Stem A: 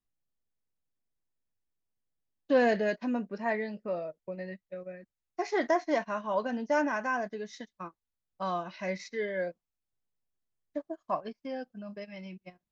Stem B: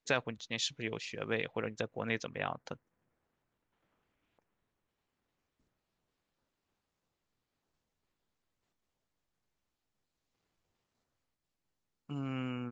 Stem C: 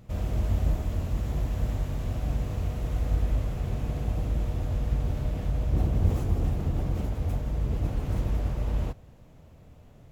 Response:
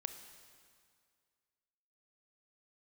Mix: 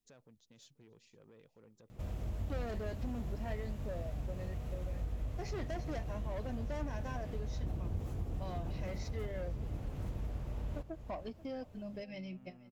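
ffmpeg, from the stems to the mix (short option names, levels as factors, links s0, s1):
-filter_complex "[0:a]equalizer=f=1300:w=1.6:g=-13.5,bandreject=f=50:t=h:w=6,bandreject=f=100:t=h:w=6,bandreject=f=150:t=h:w=6,bandreject=f=200:t=h:w=6,asoftclip=type=tanh:threshold=0.0251,volume=1.41,asplit=2[s0][s1];[s1]volume=0.0794[s2];[1:a]equalizer=f=2200:t=o:w=2.8:g=-13,alimiter=level_in=2.99:limit=0.0631:level=0:latency=1:release=82,volume=0.335,asoftclip=type=tanh:threshold=0.0126,volume=0.2,asplit=2[s3][s4];[s4]volume=0.0841[s5];[2:a]adelay=1900,volume=0.708,asplit=2[s6][s7];[s7]volume=0.158[s8];[s2][s5][s8]amix=inputs=3:normalize=0,aecho=0:1:486:1[s9];[s0][s3][s6][s9]amix=inputs=4:normalize=0,acompressor=threshold=0.00708:ratio=2"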